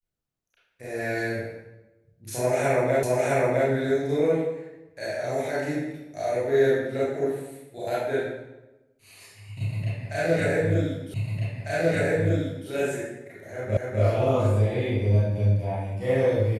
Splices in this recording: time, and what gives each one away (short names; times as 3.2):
3.03 repeat of the last 0.66 s
11.14 repeat of the last 1.55 s
13.77 repeat of the last 0.25 s